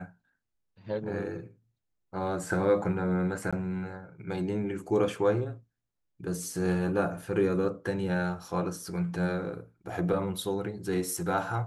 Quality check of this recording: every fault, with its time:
3.51–3.53 s: dropout 16 ms

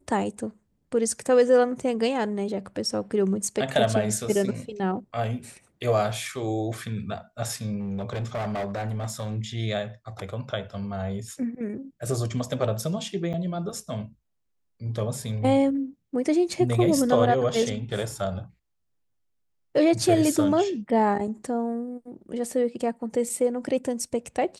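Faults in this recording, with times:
7.79–9.38 s: clipped -26 dBFS
13.33–13.34 s: dropout 9 ms

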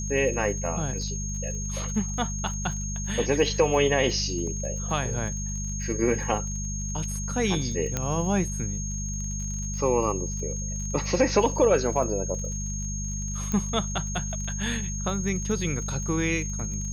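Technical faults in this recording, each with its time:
crackle 45 per s -36 dBFS
hum 50 Hz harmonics 4 -32 dBFS
whine 6.5 kHz -34 dBFS
7.97 s: pop -12 dBFS
13.52 s: pop -16 dBFS

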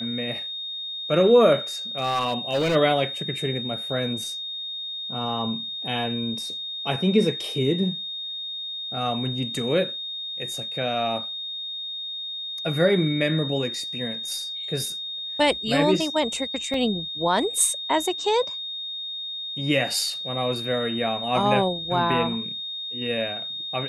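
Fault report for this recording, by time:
whine 3.7 kHz -30 dBFS
1.98–2.76 s: clipped -19 dBFS
16.74 s: dropout 2.5 ms

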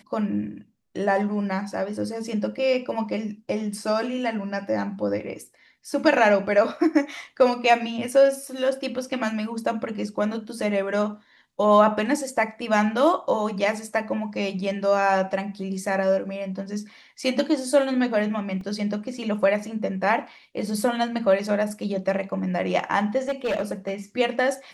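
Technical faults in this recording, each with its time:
18.61 s: dropout 2.7 ms
23.28–23.94 s: clipped -21 dBFS

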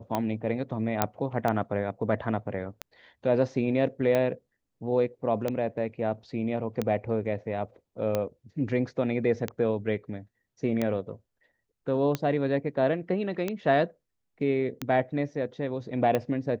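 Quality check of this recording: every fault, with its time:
tick 45 rpm -14 dBFS
1.02 s: pop -7 dBFS

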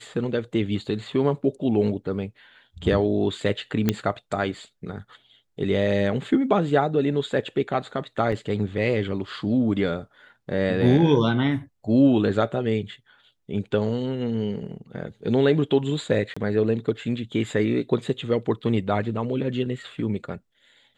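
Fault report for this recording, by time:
3.89 s: pop -7 dBFS
8.32 s: dropout 4.2 ms
16.34–16.36 s: dropout 25 ms

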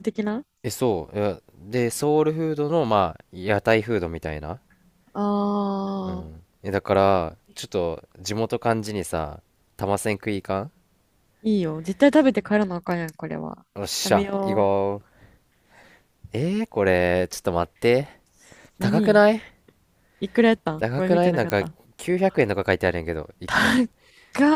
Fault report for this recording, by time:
21.50 s: pop -10 dBFS

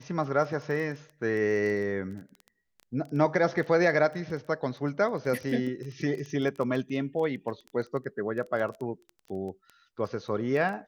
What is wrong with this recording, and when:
crackle 13 per s -34 dBFS

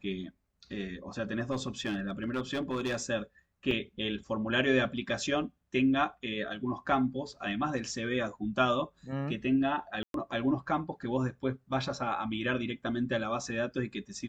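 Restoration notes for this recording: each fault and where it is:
1.51–3.03 s: clipped -27.5 dBFS
3.71 s: dropout 2.9 ms
10.03–10.14 s: dropout 112 ms

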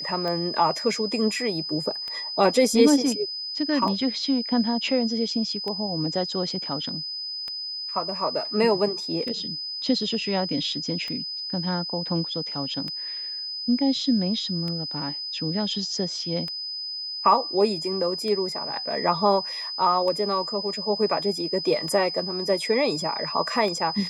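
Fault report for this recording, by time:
tick 33 1/3 rpm -19 dBFS
whine 5 kHz -30 dBFS

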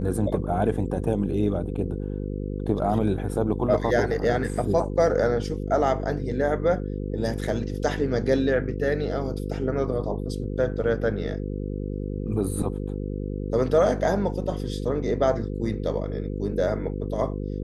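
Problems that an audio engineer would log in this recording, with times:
buzz 50 Hz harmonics 10 -30 dBFS

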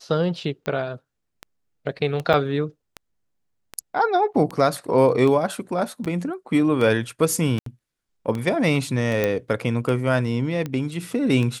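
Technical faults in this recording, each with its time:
tick 78 rpm -16 dBFS
2.33–2.34 s: dropout 6.1 ms
6.05–6.06 s: dropout 8 ms
7.59–7.66 s: dropout 73 ms
9.24 s: pop -9 dBFS

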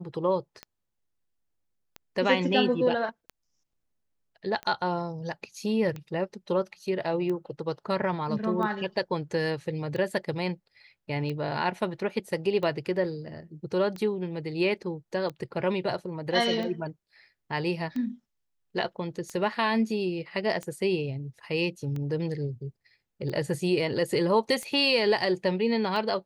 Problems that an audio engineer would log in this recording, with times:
tick 45 rpm -23 dBFS

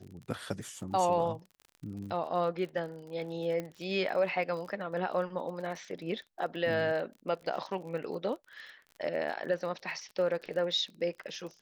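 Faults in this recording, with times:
crackle 37 per s -41 dBFS
3.60 s: pop -23 dBFS

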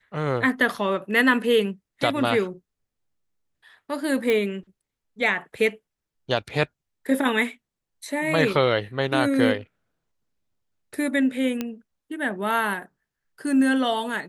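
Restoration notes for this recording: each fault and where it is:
4.30 s: pop -12 dBFS
11.61 s: pop -13 dBFS

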